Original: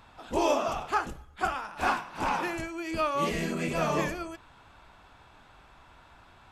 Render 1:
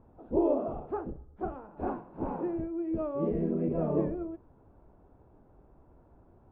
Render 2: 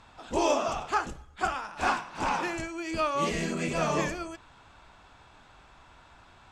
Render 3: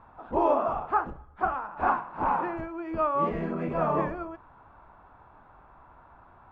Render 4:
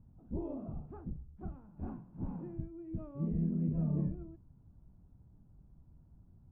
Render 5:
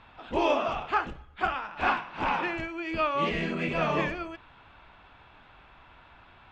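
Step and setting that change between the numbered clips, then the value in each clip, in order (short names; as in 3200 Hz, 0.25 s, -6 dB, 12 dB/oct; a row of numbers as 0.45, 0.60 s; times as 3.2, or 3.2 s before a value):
synth low-pass, frequency: 430, 7600, 1100, 170, 2900 Hz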